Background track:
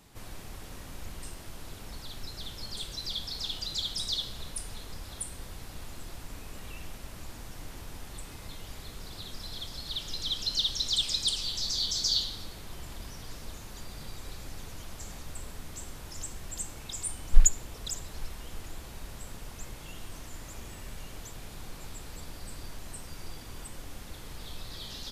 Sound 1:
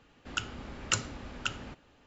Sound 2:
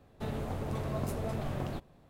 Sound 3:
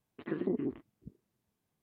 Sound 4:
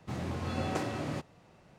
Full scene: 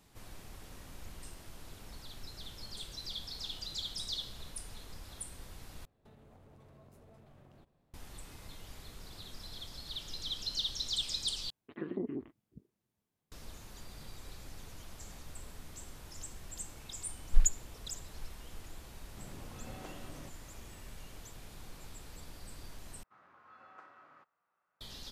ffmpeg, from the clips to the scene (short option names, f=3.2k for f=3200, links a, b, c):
-filter_complex "[4:a]asplit=2[a][b];[0:a]volume=-6.5dB[c];[2:a]acompressor=threshold=-42dB:ratio=6:attack=3.2:release=140:knee=1:detection=peak[d];[b]bandpass=f=1.3k:t=q:w=4:csg=0[e];[c]asplit=4[f][g][h][i];[f]atrim=end=5.854[j];[d]atrim=end=2.09,asetpts=PTS-STARTPTS,volume=-13.5dB[k];[g]atrim=start=7.936:end=11.504[l];[3:a]atrim=end=1.82,asetpts=PTS-STARTPTS,volume=-4.5dB[m];[h]atrim=start=13.316:end=23.034[n];[e]atrim=end=1.78,asetpts=PTS-STARTPTS,volume=-10dB[o];[i]atrim=start=24.806[p];[a]atrim=end=1.78,asetpts=PTS-STARTPTS,volume=-15dB,afade=t=in:d=0.004:c=hsin,afade=t=out:st=1.776:d=0.004:c=hsin,adelay=19090[q];[j][k]acrossfade=d=0.004:c1=hsin:c2=hsin[r];[r][l]acrossfade=d=0.004:c1=hsin:c2=hsin[s];[s][m]acrossfade=d=0.004:c1=hsin:c2=hsin[t];[t][n]acrossfade=d=0.004:c1=hsin:c2=hsin[u];[u][o]acrossfade=d=0.004:c1=hsin:c2=hsin[v];[v][p]acrossfade=d=0.004:c1=hsin:c2=hsin[w];[w][q]amix=inputs=2:normalize=0"